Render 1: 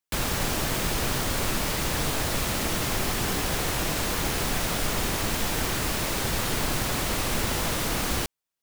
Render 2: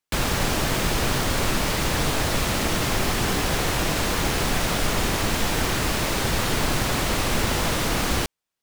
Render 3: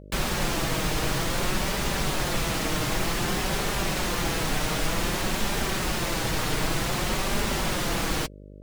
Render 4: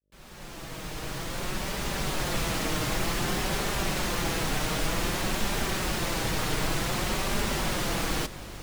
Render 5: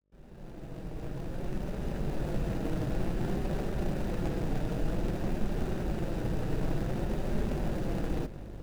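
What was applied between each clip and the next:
treble shelf 8.8 kHz -7 dB; trim +4.5 dB
flange 0.54 Hz, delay 4.9 ms, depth 1.7 ms, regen -24%; mains buzz 50 Hz, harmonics 12, -45 dBFS -4 dB/octave
fade-in on the opening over 2.42 s; echo that smears into a reverb 699 ms, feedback 57%, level -15 dB; trim -2 dB
median filter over 41 samples

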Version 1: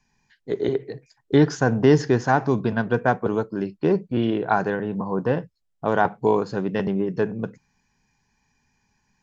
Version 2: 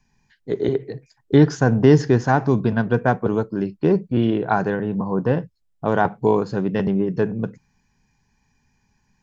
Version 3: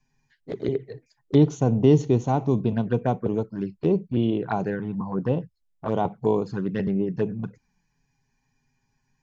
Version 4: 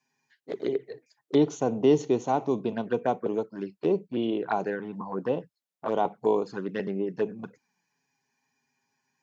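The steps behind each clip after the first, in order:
bass shelf 260 Hz +6.5 dB
touch-sensitive flanger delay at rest 7.6 ms, full sweep at -15.5 dBFS; trim -3.5 dB
high-pass 320 Hz 12 dB/octave

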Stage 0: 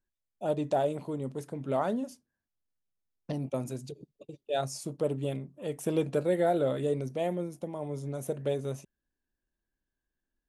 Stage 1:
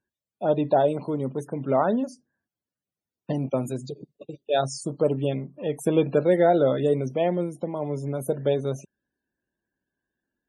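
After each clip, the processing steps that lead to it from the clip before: loudest bins only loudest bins 64; high-pass 110 Hz; trim +7.5 dB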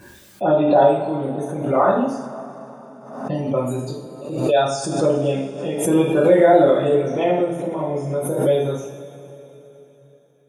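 dynamic bell 1.1 kHz, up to +5 dB, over -35 dBFS, Q 1.4; two-slope reverb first 0.58 s, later 3.8 s, from -17 dB, DRR -7 dB; swell ahead of each attack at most 64 dB/s; trim -3 dB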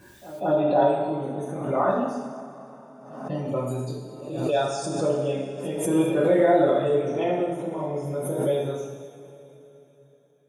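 reverse echo 192 ms -17.5 dB; gated-style reverb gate 260 ms flat, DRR 7.5 dB; trim -6.5 dB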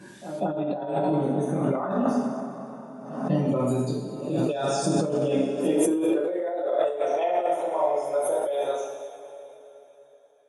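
compressor with a negative ratio -27 dBFS, ratio -1; high-pass sweep 180 Hz -> 670 Hz, 5.17–7.04 s; AC-3 64 kbps 44.1 kHz

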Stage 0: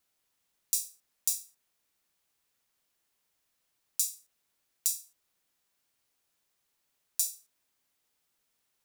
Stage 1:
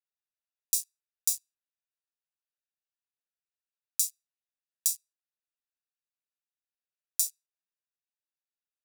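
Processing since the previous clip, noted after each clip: local Wiener filter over 41 samples; Bessel high-pass 2.6 kHz, order 2; trim +2.5 dB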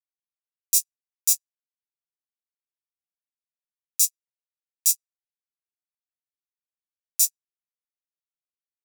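fifteen-band graphic EQ 2.5 kHz +7 dB, 6.3 kHz +5 dB, 16 kHz +7 dB; loudness maximiser +6.5 dB; upward expansion 2.5:1, over -38 dBFS; trim +2.5 dB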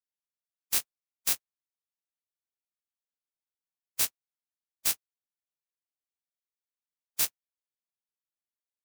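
spectral contrast reduction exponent 0.16; trim -6.5 dB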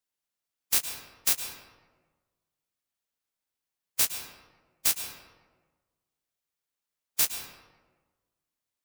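in parallel at +0.5 dB: compression, threshold -33 dBFS, peak gain reduction 11.5 dB; on the sum: reverberation RT60 1.4 s, pre-delay 104 ms, DRR 6.5 dB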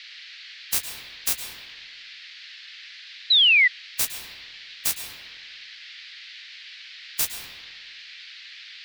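octave divider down 2 oct, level -2 dB; painted sound fall, 3.30–3.68 s, 1.9–4.1 kHz -16 dBFS; band noise 1.7–4.6 kHz -43 dBFS

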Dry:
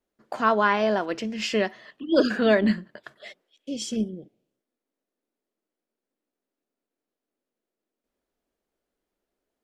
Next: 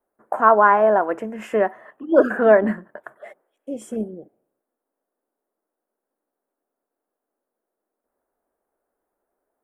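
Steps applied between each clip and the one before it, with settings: FFT filter 170 Hz 0 dB, 810 Hz +14 dB, 1.6 kHz +8 dB, 4.6 kHz -25 dB, 9.4 kHz +7 dB; trim -3.5 dB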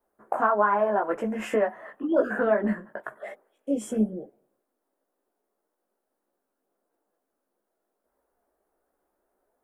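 compression 3:1, threshold -25 dBFS, peak gain reduction 13 dB; chorus voices 6, 1.2 Hz, delay 17 ms, depth 3 ms; trim +5.5 dB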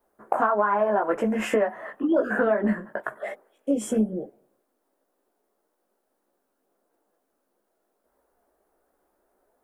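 compression 5:1, threshold -24 dBFS, peak gain reduction 7.5 dB; trim +5.5 dB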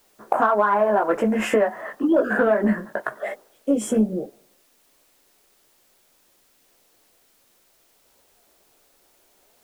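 in parallel at -11.5 dB: saturation -19.5 dBFS, distortion -13 dB; on the sum: added noise white -64 dBFS; trim +2 dB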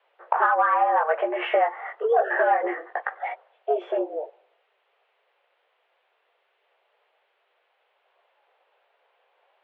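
mistuned SSB +140 Hz 280–3000 Hz; trim -1.5 dB

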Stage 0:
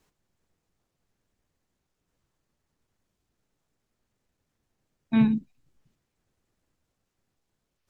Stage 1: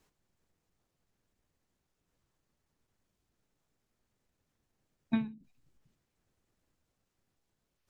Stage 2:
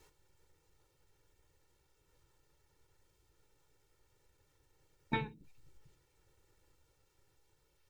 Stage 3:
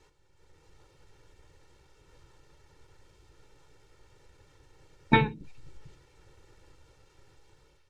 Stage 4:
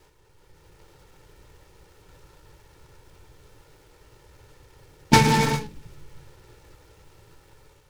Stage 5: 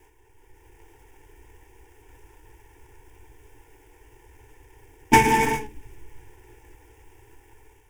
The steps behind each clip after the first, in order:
endings held to a fixed fall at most 130 dB/s; trim -2 dB
comb 2.2 ms, depth 90%; trim +5 dB
level rider gain up to 10.5 dB; distance through air 63 m; trim +3.5 dB
gated-style reverb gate 410 ms flat, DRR 1 dB; delay time shaken by noise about 3.1 kHz, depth 0.059 ms; trim +5 dB
static phaser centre 850 Hz, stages 8; trim +3 dB

